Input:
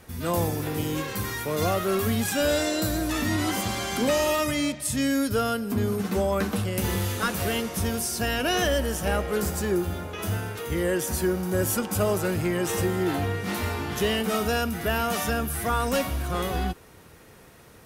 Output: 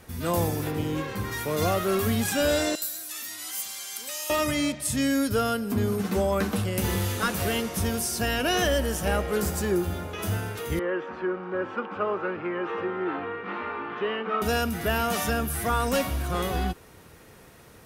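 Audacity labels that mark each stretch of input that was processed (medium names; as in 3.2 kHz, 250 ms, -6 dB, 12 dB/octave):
0.700000	1.310000	treble shelf 4.9 kHz -> 3.4 kHz -11 dB
2.750000	4.300000	differentiator
10.790000	14.420000	cabinet simulation 360–2400 Hz, peaks and dips at 670 Hz -7 dB, 1.2 kHz +6 dB, 2 kHz -4 dB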